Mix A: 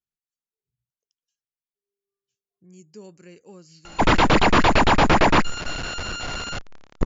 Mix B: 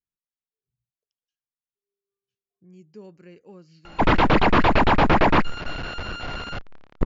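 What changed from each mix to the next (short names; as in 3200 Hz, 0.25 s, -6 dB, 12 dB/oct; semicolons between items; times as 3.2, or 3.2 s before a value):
master: add air absorption 210 m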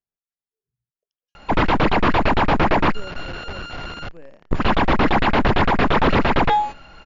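speech: add bell 620 Hz +13 dB 0.83 oct; background: entry -2.50 s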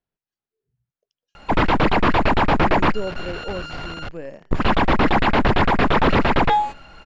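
speech +10.5 dB; background: remove brick-wall FIR low-pass 7300 Hz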